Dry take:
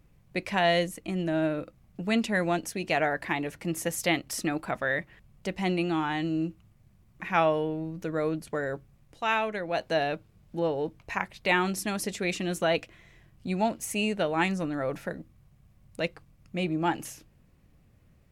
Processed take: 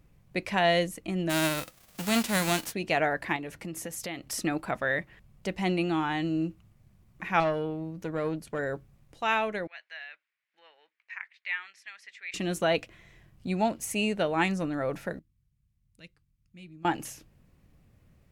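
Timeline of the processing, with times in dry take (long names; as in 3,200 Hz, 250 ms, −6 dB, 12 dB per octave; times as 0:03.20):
0:01.29–0:02.72: spectral envelope flattened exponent 0.3
0:03.36–0:04.25: downward compressor 4 to 1, threshold −34 dBFS
0:07.40–0:08.59: tube saturation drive 20 dB, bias 0.5
0:09.67–0:12.34: four-pole ladder band-pass 2,200 Hz, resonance 55%
0:15.19–0:16.85: guitar amp tone stack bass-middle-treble 6-0-2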